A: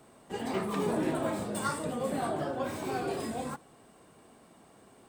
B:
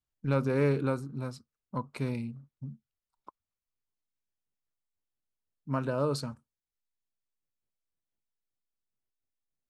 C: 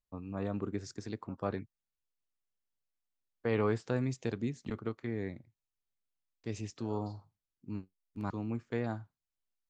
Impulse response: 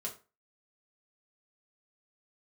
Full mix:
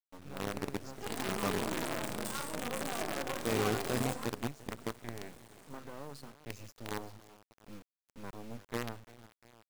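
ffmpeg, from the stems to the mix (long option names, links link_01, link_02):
-filter_complex "[0:a]bandreject=frequency=50:width_type=h:width=6,bandreject=frequency=100:width_type=h:width=6,bandreject=frequency=150:width_type=h:width=6,bandreject=frequency=200:width_type=h:width=6,bandreject=frequency=250:width_type=h:width=6,bandreject=frequency=300:width_type=h:width=6,adelay=700,volume=-4.5dB[link_01];[1:a]highpass=120,acompressor=threshold=-29dB:ratio=16,volume=-12dB,asplit=2[link_02][link_03];[link_03]volume=-14dB[link_04];[2:a]volume=-3.5dB,asplit=2[link_05][link_06];[link_06]volume=-16.5dB[link_07];[link_01][link_02]amix=inputs=2:normalize=0,dynaudnorm=framelen=190:gausssize=9:maxgain=3.5dB,alimiter=level_in=4.5dB:limit=-24dB:level=0:latency=1:release=10,volume=-4.5dB,volume=0dB[link_08];[link_04][link_07]amix=inputs=2:normalize=0,aecho=0:1:348|696|1044|1392|1740|2088|2436:1|0.51|0.26|0.133|0.0677|0.0345|0.0176[link_09];[link_05][link_08][link_09]amix=inputs=3:normalize=0,acrusher=bits=6:dc=4:mix=0:aa=0.000001"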